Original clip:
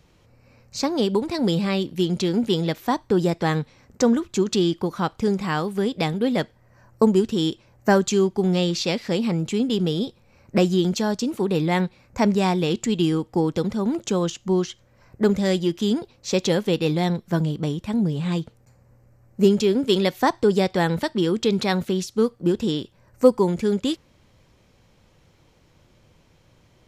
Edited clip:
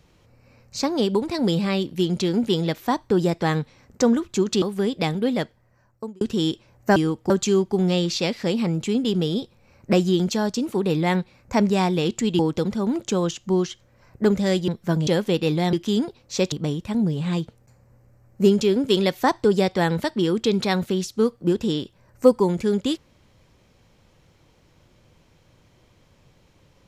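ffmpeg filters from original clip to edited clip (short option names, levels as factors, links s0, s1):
-filter_complex "[0:a]asplit=10[s0][s1][s2][s3][s4][s5][s6][s7][s8][s9];[s0]atrim=end=4.622[s10];[s1]atrim=start=5.608:end=7.2,asetpts=PTS-STARTPTS,afade=t=out:st=0.592:d=1[s11];[s2]atrim=start=7.2:end=7.952,asetpts=PTS-STARTPTS,afade=t=in:d=0.004:c=hsin[s12];[s3]atrim=start=13.038:end=13.382[s13];[s4]atrim=start=7.948:end=13.042[s14];[s5]atrim=start=13.378:end=15.672[s15];[s6]atrim=start=17.118:end=17.512[s16];[s7]atrim=start=16.458:end=17.122[s17];[s8]atrim=start=15.668:end=16.462[s18];[s9]atrim=start=17.508[s19];[s11][s12]concat=n=2:v=0:a=1[s20];[s10][s20]acrossfade=d=0.004:c1=hsin:c2=hsin[s21];[s21][s13]acrossfade=d=0.004:c1=hsin:c2=hsin[s22];[s22][s14]acrossfade=d=0.004:c1=hsin:c2=hsin[s23];[s23][s15]acrossfade=d=0.004:c1=hsin:c2=hsin[s24];[s24][s16]acrossfade=d=0.004:c1=hsin:c2=hsin[s25];[s25][s17]acrossfade=d=0.004:c1=hsin:c2=hsin[s26];[s26][s18]acrossfade=d=0.004:c1=hsin:c2=hsin[s27];[s27][s19]acrossfade=d=0.004:c1=hsin:c2=hsin"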